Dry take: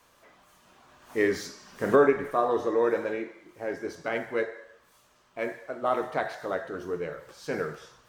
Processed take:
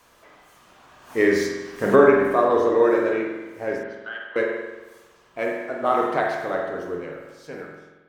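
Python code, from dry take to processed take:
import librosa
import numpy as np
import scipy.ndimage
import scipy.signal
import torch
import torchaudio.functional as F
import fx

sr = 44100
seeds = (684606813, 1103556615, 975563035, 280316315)

y = fx.fade_out_tail(x, sr, length_s=1.93)
y = fx.double_bandpass(y, sr, hz=2200.0, octaves=0.97, at=(3.83, 4.36))
y = fx.rev_spring(y, sr, rt60_s=1.2, pass_ms=(45,), chirp_ms=65, drr_db=1.5)
y = y * librosa.db_to_amplitude(4.5)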